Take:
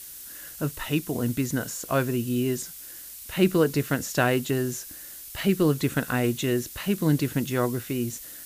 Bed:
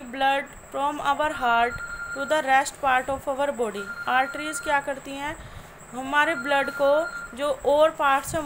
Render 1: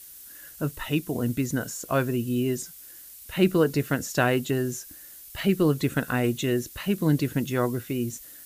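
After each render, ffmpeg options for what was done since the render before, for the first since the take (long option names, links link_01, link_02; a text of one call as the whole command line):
ffmpeg -i in.wav -af "afftdn=noise_reduction=6:noise_floor=-42" out.wav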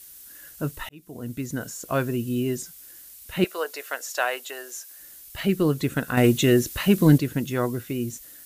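ffmpeg -i in.wav -filter_complex "[0:a]asettb=1/sr,asplit=3[link_01][link_02][link_03];[link_01]atrim=end=3.444[link_04];[link_02]atrim=start=3.44:end=4.99,asetpts=PTS-STARTPTS,afade=type=in:duration=0.004:curve=qsin,afade=type=out:start_time=1.546:duration=0.004:curve=qsin,highpass=frequency=560:width=0.5412,highpass=frequency=560:width=1.3066[link_05];[link_03]atrim=start=4.986[link_06];[link_04][link_05]acrossfade=duration=0.004:curve1=hsin:curve2=qsin[link_07];[link_07][link_06]acrossfade=duration=0.004:curve1=qsin:curve2=hsin,asettb=1/sr,asplit=3[link_08][link_09][link_10];[link_08]atrim=end=6.174[link_11];[link_09]atrim=start=6.17:end=7.18,asetpts=PTS-STARTPTS,afade=type=in:duration=0.004:curve=qsin,afade=type=out:start_time=1.006:duration=0.004:curve=qsin,acontrast=87[link_12];[link_10]atrim=start=7.176[link_13];[link_11][link_12]acrossfade=duration=0.004:curve1=hsin:curve2=qsin[link_14];[link_14][link_13]acrossfade=duration=0.004:curve1=qsin:curve2=hsin,asplit=2[link_15][link_16];[link_15]atrim=end=0.89,asetpts=PTS-STARTPTS,afade=type=out:start_time=0.886:duration=0.004:curve=hsin[link_17];[link_16]atrim=start=0.89,asetpts=PTS-STARTPTS,afade=type=in:duration=1.29:curve=qsin[link_18];[link_17][link_18]concat=n=2:v=0:a=1" out.wav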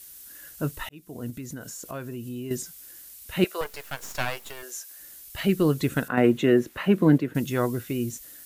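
ffmpeg -i in.wav -filter_complex "[0:a]asettb=1/sr,asplit=3[link_01][link_02][link_03];[link_01]atrim=end=1.304[link_04];[link_02]atrim=start=1.3:end=2.51,asetpts=PTS-STARTPTS,afade=type=in:duration=0.004:curve=qsin,afade=type=out:start_time=1.206:duration=0.004:curve=qsin,acompressor=threshold=-35dB:ratio=3:attack=3.2:release=140:knee=1:detection=peak[link_05];[link_03]atrim=start=2.506[link_06];[link_04][link_05]acrossfade=duration=0.004:curve1=hsin:curve2=qsin[link_07];[link_07][link_06]acrossfade=duration=0.004:curve1=qsin:curve2=hsin,asettb=1/sr,asplit=3[link_08][link_09][link_10];[link_08]atrim=end=3.614[link_11];[link_09]atrim=start=3.61:end=4.63,asetpts=PTS-STARTPTS,afade=type=in:duration=0.004:curve=qsin,afade=type=out:start_time=1.016:duration=0.004:curve=qsin,aeval=exprs='max(val(0),0)':channel_layout=same[link_12];[link_10]atrim=start=4.626[link_13];[link_11][link_12]acrossfade=duration=0.004:curve1=hsin:curve2=qsin[link_14];[link_14][link_13]acrossfade=duration=0.004:curve1=qsin:curve2=hsin,asettb=1/sr,asplit=3[link_15][link_16][link_17];[link_15]atrim=end=6.084[link_18];[link_16]atrim=start=6.08:end=7.35,asetpts=PTS-STARTPTS,afade=type=in:duration=0.004:curve=qsin,afade=type=out:start_time=1.266:duration=0.004:curve=qsin,acrossover=split=160 2500:gain=0.178 1 0.141[link_19][link_20][link_21];[link_19][link_20][link_21]amix=inputs=3:normalize=0[link_22];[link_17]atrim=start=7.346[link_23];[link_18][link_22]acrossfade=duration=0.004:curve1=hsin:curve2=qsin[link_24];[link_24][link_23]acrossfade=duration=0.004:curve1=qsin:curve2=hsin" out.wav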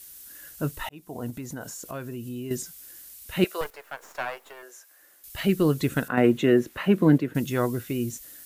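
ffmpeg -i in.wav -filter_complex "[0:a]asettb=1/sr,asplit=3[link_01][link_02][link_03];[link_01]atrim=end=0.844[link_04];[link_02]atrim=start=0.84:end=1.74,asetpts=PTS-STARTPTS,afade=type=in:duration=0.004:curve=qsin,afade=type=out:start_time=0.896:duration=0.004:curve=qsin,equalizer=frequency=830:width=1.5:gain=11[link_05];[link_03]atrim=start=1.736[link_06];[link_04][link_05]acrossfade=duration=0.004:curve1=hsin:curve2=qsin[link_07];[link_07][link_06]acrossfade=duration=0.004:curve1=qsin:curve2=hsin,asettb=1/sr,asplit=3[link_08][link_09][link_10];[link_08]atrim=end=3.704[link_11];[link_09]atrim=start=3.7:end=5.24,asetpts=PTS-STARTPTS,afade=type=in:duration=0.004:curve=qsin,afade=type=out:start_time=1.536:duration=0.004:curve=qsin,acrossover=split=340 2000:gain=0.126 1 0.251[link_12][link_13][link_14];[link_12][link_13][link_14]amix=inputs=3:normalize=0[link_15];[link_10]atrim=start=5.236[link_16];[link_11][link_15]acrossfade=duration=0.004:curve1=hsin:curve2=qsin[link_17];[link_17][link_16]acrossfade=duration=0.004:curve1=qsin:curve2=hsin" out.wav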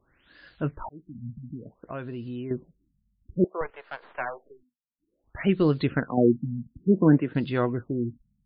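ffmpeg -i in.wav -af "afftfilt=real='re*lt(b*sr/1024,220*pow(5100/220,0.5+0.5*sin(2*PI*0.57*pts/sr)))':imag='im*lt(b*sr/1024,220*pow(5100/220,0.5+0.5*sin(2*PI*0.57*pts/sr)))':win_size=1024:overlap=0.75" out.wav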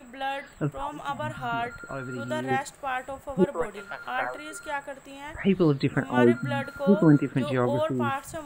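ffmpeg -i in.wav -i bed.wav -filter_complex "[1:a]volume=-9dB[link_01];[0:a][link_01]amix=inputs=2:normalize=0" out.wav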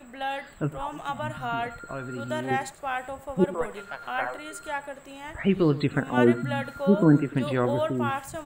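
ffmpeg -i in.wav -filter_complex "[0:a]asplit=2[link_01][link_02];[link_02]adelay=99.13,volume=-17dB,highshelf=frequency=4000:gain=-2.23[link_03];[link_01][link_03]amix=inputs=2:normalize=0" out.wav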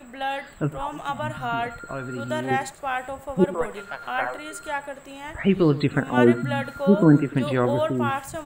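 ffmpeg -i in.wav -af "volume=3dB" out.wav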